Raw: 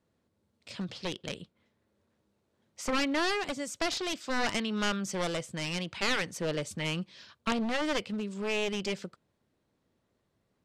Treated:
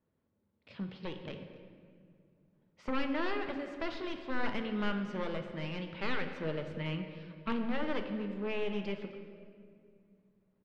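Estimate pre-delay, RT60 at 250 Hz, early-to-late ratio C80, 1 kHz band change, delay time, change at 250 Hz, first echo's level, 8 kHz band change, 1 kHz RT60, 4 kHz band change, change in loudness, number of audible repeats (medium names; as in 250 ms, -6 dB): 5 ms, 3.0 s, 8.0 dB, -5.0 dB, 258 ms, -2.5 dB, -19.5 dB, under -25 dB, 1.9 s, -11.0 dB, -5.0 dB, 1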